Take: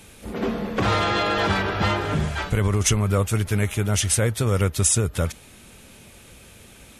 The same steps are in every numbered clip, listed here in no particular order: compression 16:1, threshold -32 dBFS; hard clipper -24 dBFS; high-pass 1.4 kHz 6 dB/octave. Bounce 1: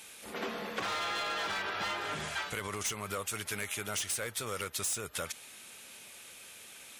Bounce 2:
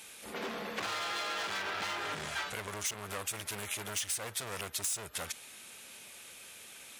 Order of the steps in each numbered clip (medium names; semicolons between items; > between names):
high-pass > hard clipper > compression; hard clipper > high-pass > compression